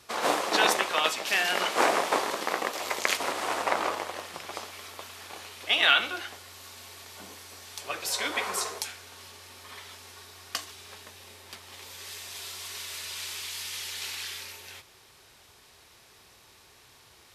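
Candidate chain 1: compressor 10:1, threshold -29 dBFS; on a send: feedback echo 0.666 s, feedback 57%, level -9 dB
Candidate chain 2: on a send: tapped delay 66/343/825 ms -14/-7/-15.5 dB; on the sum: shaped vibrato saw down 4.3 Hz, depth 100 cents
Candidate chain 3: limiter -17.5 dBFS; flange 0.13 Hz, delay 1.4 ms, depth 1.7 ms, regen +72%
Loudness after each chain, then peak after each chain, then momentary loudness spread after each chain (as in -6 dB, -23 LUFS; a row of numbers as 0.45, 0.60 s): -35.0, -27.5, -36.0 LUFS; -9.5, -5.5, -21.0 dBFS; 13, 20, 17 LU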